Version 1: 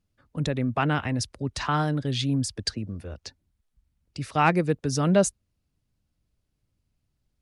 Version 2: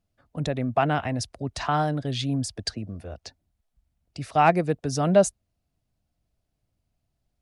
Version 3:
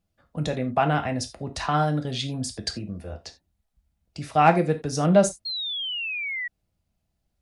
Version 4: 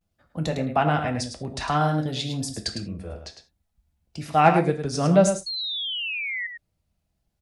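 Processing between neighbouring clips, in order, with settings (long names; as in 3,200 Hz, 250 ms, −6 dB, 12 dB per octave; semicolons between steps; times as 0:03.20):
parametric band 690 Hz +11 dB 0.41 octaves; level −1.5 dB
reverb whose tail is shaped and stops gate 110 ms falling, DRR 5 dB; sound drawn into the spectrogram fall, 0:05.45–0:06.48, 1,900–4,300 Hz −30 dBFS
pitch vibrato 0.56 Hz 70 cents; single-tap delay 105 ms −8 dB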